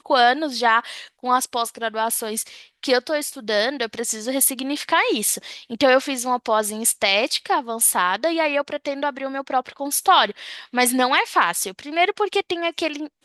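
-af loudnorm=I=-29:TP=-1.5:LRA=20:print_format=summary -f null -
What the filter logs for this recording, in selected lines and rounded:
Input Integrated:    -20.8 LUFS
Input True Peak:      -3.8 dBTP
Input LRA:             2.1 LU
Input Threshold:     -31.0 LUFS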